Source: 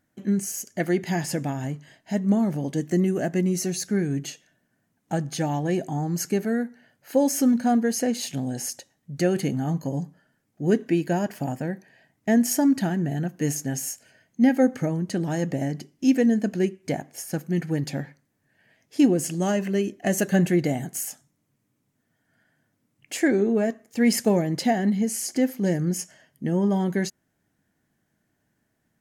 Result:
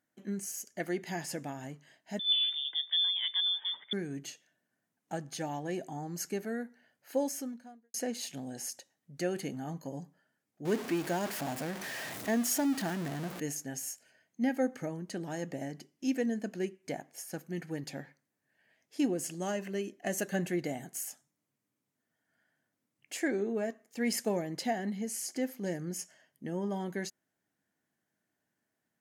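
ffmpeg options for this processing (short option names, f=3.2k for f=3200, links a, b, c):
-filter_complex "[0:a]asettb=1/sr,asplit=3[a][b][c];[a]atrim=end=2.194[d];[b]atrim=start=2.19:end=3.93,asetpts=PTS-STARTPTS,afade=t=in:d=0.004:c=qsin,afade=t=out:st=1.736:d=0.004:c=qsin,lowpass=f=3.1k:t=q:w=0.5098,lowpass=f=3.1k:t=q:w=0.6013,lowpass=f=3.1k:t=q:w=0.9,lowpass=f=3.1k:t=q:w=2.563,afreqshift=-3700[e];[c]atrim=start=3.926[f];[d][e]acrossfade=d=0.004:c1=hsin:c2=qsin[g];[g][f]acrossfade=d=0.004:c1=qsin:c2=hsin,asettb=1/sr,asplit=3[h][i][j];[h]atrim=end=10.654[k];[i]atrim=start=10.65:end=13.4,asetpts=PTS-STARTPTS,afade=t=in:d=0.004:c=qsin,afade=t=out:st=2.746:d=0.004:c=qsin,aeval=exprs='val(0)+0.5*0.0531*sgn(val(0))':c=same[l];[j]atrim=start=13.396[m];[k][l]acrossfade=d=0.004:c1=hsin:c2=qsin[n];[n][m]acrossfade=d=0.004:c1=qsin:c2=hsin,asplit=2[o][p];[o]atrim=end=7.94,asetpts=PTS-STARTPTS,afade=t=out:st=7.2:d=0.74:c=qua[q];[p]atrim=start=7.94,asetpts=PTS-STARTPTS,afade=t=in:d=0.004:c=hsin[r];[q][r]concat=n=2:v=0:a=1,highpass=f=330:p=1,volume=-8dB"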